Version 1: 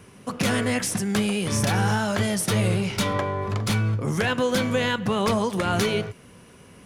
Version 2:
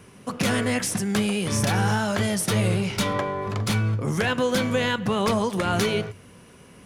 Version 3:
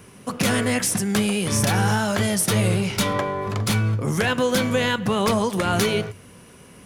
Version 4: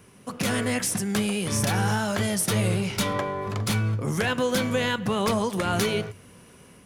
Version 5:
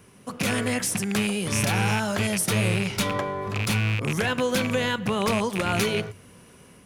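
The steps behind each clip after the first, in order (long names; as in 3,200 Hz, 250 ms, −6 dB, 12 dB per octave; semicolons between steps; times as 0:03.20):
hum removal 48.08 Hz, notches 2
high-shelf EQ 10,000 Hz +7.5 dB; level +2 dB
automatic gain control gain up to 3 dB; level −6.5 dB
loose part that buzzes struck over −26 dBFS, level −17 dBFS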